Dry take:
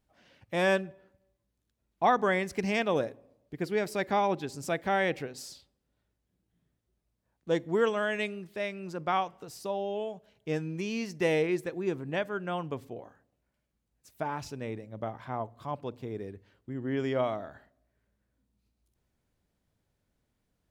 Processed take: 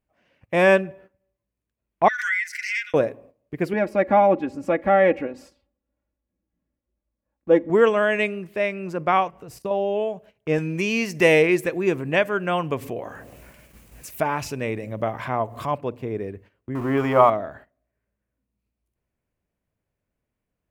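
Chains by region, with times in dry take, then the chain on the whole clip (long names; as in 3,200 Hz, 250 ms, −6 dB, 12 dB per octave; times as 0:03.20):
0:02.08–0:02.94: Chebyshev high-pass with heavy ripple 1,400 Hz, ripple 9 dB + comb filter 6.8 ms, depth 68% + background raised ahead of every attack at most 30 dB per second
0:03.73–0:07.70: low-pass filter 1,200 Hz 6 dB per octave + comb filter 3.6 ms, depth 77%
0:09.30–0:09.71: low-shelf EQ 150 Hz +11.5 dB + output level in coarse steps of 12 dB
0:10.58–0:15.78: high-shelf EQ 2,300 Hz +9 dB + upward compression, threshold −33 dBFS
0:16.75–0:17.30: converter with a step at zero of −42 dBFS + flat-topped bell 1,000 Hz +11 dB 1 octave + mains-hum notches 50/100/150/200/250/300/350/400/450 Hz
whole clip: drawn EQ curve 260 Hz 0 dB, 650 Hz +3 dB, 1,300 Hz −14 dB, 13,000 Hz −2 dB; noise gate −55 dBFS, range −12 dB; flat-topped bell 1,700 Hz +13.5 dB; level +8 dB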